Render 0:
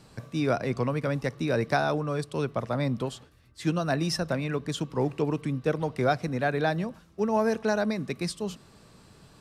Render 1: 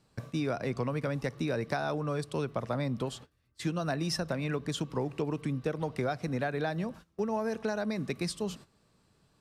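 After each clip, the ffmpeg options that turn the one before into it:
-af "agate=range=-14dB:threshold=-46dB:ratio=16:detection=peak,acompressor=threshold=-28dB:ratio=6"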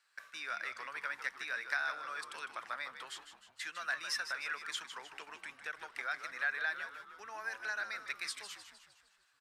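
-filter_complex "[0:a]highpass=f=1.6k:t=q:w=3,asplit=7[a][b][c][d][e][f][g];[b]adelay=154,afreqshift=-93,volume=-10dB[h];[c]adelay=308,afreqshift=-186,volume=-15.7dB[i];[d]adelay=462,afreqshift=-279,volume=-21.4dB[j];[e]adelay=616,afreqshift=-372,volume=-27dB[k];[f]adelay=770,afreqshift=-465,volume=-32.7dB[l];[g]adelay=924,afreqshift=-558,volume=-38.4dB[m];[a][h][i][j][k][l][m]amix=inputs=7:normalize=0,volume=-3.5dB"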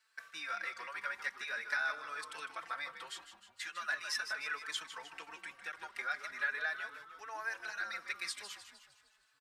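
-filter_complex "[0:a]asplit=2[a][b];[b]adelay=4.1,afreqshift=0.42[c];[a][c]amix=inputs=2:normalize=1,volume=3dB"

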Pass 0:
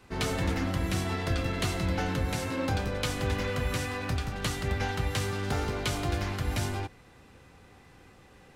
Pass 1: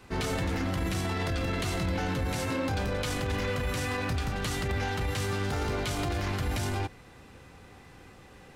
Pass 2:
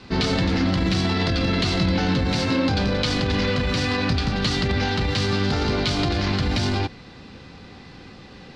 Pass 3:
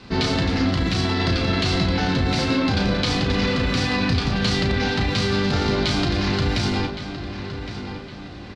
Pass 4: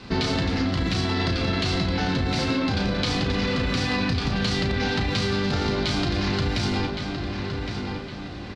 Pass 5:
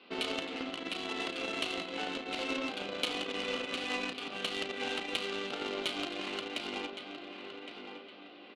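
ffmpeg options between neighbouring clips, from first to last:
-af "alimiter=level_in=2dB:limit=-24dB:level=0:latency=1:release=11,volume=-2dB,volume=3.5dB"
-af "lowpass=f=4.5k:t=q:w=3.1,equalizer=f=210:t=o:w=1.2:g=7.5,volume=5.5dB"
-filter_complex "[0:a]asplit=2[a][b];[b]adelay=35,volume=-7dB[c];[a][c]amix=inputs=2:normalize=0,asplit=2[d][e];[e]adelay=1114,lowpass=f=3.9k:p=1,volume=-10dB,asplit=2[f][g];[g]adelay=1114,lowpass=f=3.9k:p=1,volume=0.45,asplit=2[h][i];[i]adelay=1114,lowpass=f=3.9k:p=1,volume=0.45,asplit=2[j][k];[k]adelay=1114,lowpass=f=3.9k:p=1,volume=0.45,asplit=2[l][m];[m]adelay=1114,lowpass=f=3.9k:p=1,volume=0.45[n];[d][f][h][j][l][n]amix=inputs=6:normalize=0"
-af "acompressor=threshold=-22dB:ratio=6,volume=1.5dB"
-af "highpass=f=310:w=0.5412,highpass=f=310:w=1.3066,equalizer=f=370:t=q:w=4:g=-3,equalizer=f=920:t=q:w=4:g=-6,equalizer=f=1.7k:t=q:w=4:g=-9,equalizer=f=2.9k:t=q:w=4:g=7,lowpass=f=3.5k:w=0.5412,lowpass=f=3.5k:w=1.3066,aeval=exprs='0.211*(cos(1*acos(clip(val(0)/0.211,-1,1)))-cos(1*PI/2))+0.0376*(cos(3*acos(clip(val(0)/0.211,-1,1)))-cos(3*PI/2))+0.00531*(cos(7*acos(clip(val(0)/0.211,-1,1)))-cos(7*PI/2))':c=same"

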